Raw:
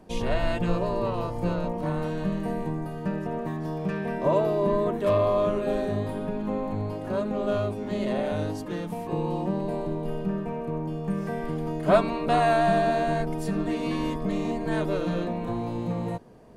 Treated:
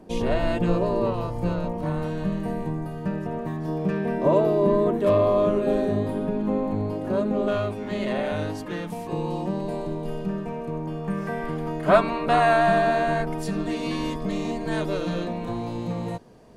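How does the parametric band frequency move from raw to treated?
parametric band +6 dB 1.9 octaves
320 Hz
from 0:01.13 67 Hz
from 0:03.68 300 Hz
from 0:07.48 2,000 Hz
from 0:08.90 6,100 Hz
from 0:10.87 1,500 Hz
from 0:13.43 5,200 Hz

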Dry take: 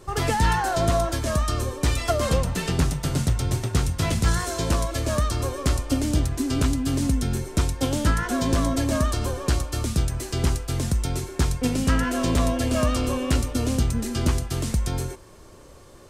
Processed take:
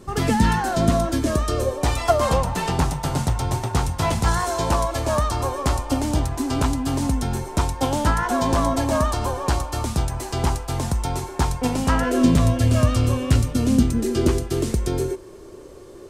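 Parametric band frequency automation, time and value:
parametric band +13.5 dB 0.75 octaves
0:01.05 220 Hz
0:01.95 870 Hz
0:11.97 870 Hz
0:12.45 110 Hz
0:13.33 110 Hz
0:14.08 380 Hz

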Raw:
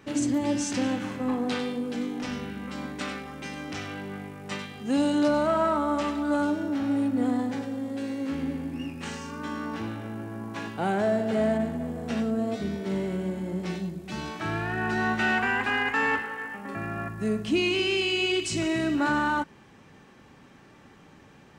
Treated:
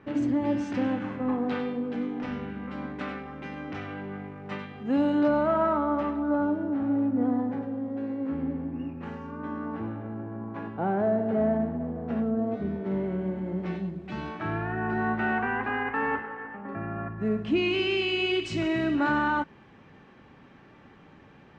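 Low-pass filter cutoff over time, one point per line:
0:05.77 2,000 Hz
0:06.23 1,200 Hz
0:12.41 1,200 Hz
0:14.17 2,500 Hz
0:14.82 1,400 Hz
0:17.02 1,400 Hz
0:17.78 3,200 Hz

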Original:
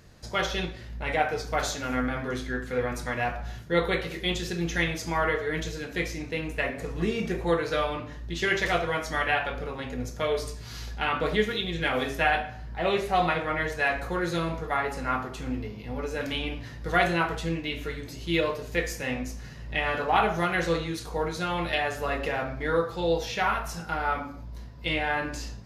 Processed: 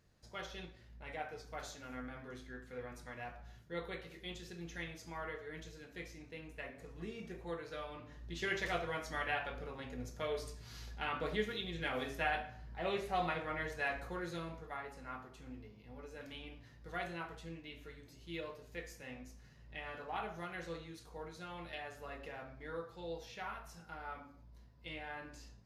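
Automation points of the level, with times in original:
0:07.86 −18 dB
0:08.26 −11.5 dB
0:13.91 −11.5 dB
0:14.94 −18.5 dB

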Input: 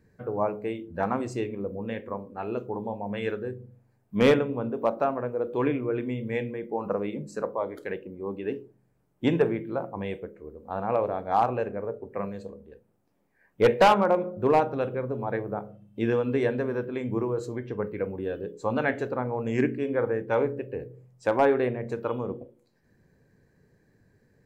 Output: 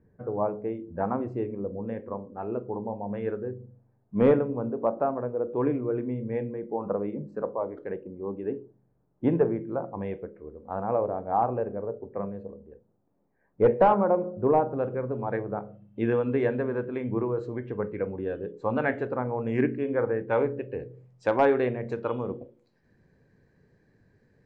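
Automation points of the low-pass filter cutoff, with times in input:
0:09.59 1,100 Hz
0:10.56 2,000 Hz
0:11.00 1,000 Hz
0:14.73 1,000 Hz
0:15.13 2,300 Hz
0:20.11 2,300 Hz
0:20.83 5,000 Hz

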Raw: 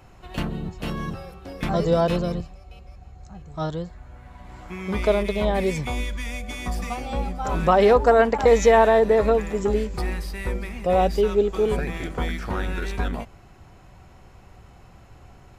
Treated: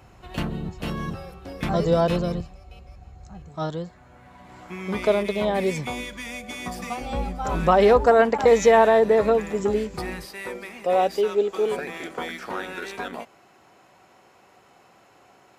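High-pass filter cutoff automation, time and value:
40 Hz
from 0:03.49 140 Hz
from 0:07.01 47 Hz
from 0:08.06 110 Hz
from 0:10.25 330 Hz

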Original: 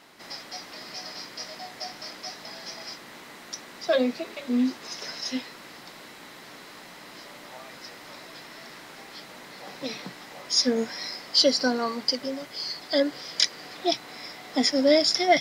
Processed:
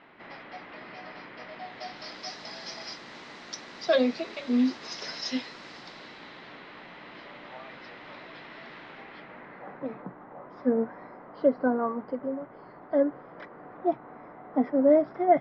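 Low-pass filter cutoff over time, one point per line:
low-pass filter 24 dB per octave
0:01.46 2,700 Hz
0:02.29 5,700 Hz
0:05.77 5,700 Hz
0:06.64 3,300 Hz
0:08.87 3,300 Hz
0:10.05 1,300 Hz

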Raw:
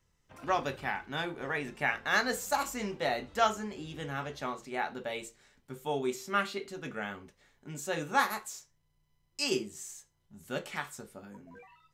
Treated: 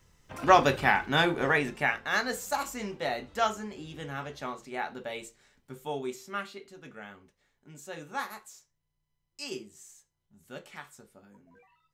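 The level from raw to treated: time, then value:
0:01.44 +10.5 dB
0:02.06 −0.5 dB
0:05.79 −0.5 dB
0:06.59 −7.5 dB

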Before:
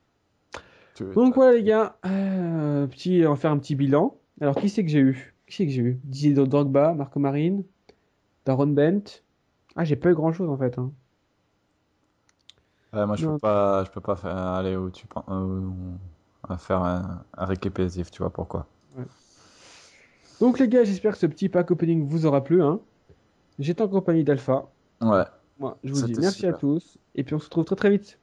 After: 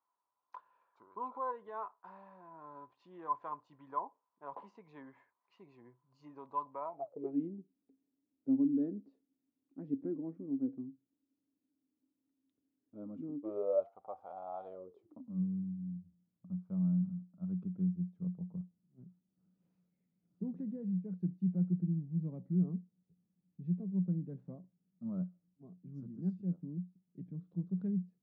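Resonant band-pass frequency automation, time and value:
resonant band-pass, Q 17
0:06.88 1,000 Hz
0:07.39 270 Hz
0:13.37 270 Hz
0:13.92 760 Hz
0:14.64 760 Hz
0:15.41 180 Hz

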